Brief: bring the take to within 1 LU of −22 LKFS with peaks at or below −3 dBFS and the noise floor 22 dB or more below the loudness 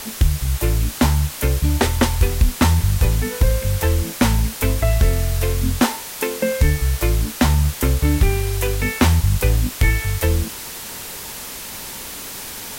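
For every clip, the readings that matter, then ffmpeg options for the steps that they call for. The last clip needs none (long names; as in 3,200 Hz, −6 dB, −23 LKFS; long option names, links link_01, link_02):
background noise floor −33 dBFS; target noise floor −42 dBFS; integrated loudness −20.0 LKFS; sample peak −4.5 dBFS; target loudness −22.0 LKFS
→ -af "afftdn=noise_reduction=9:noise_floor=-33"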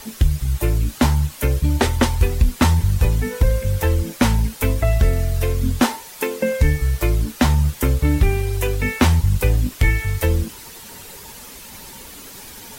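background noise floor −39 dBFS; target noise floor −42 dBFS
→ -af "afftdn=noise_reduction=6:noise_floor=-39"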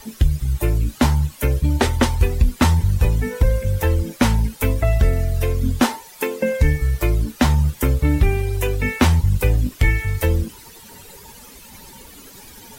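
background noise floor −43 dBFS; integrated loudness −19.5 LKFS; sample peak −4.5 dBFS; target loudness −22.0 LKFS
→ -af "volume=-2.5dB"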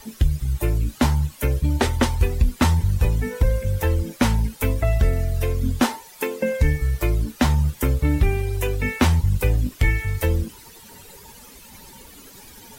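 integrated loudness −22.0 LKFS; sample peak −7.0 dBFS; background noise floor −45 dBFS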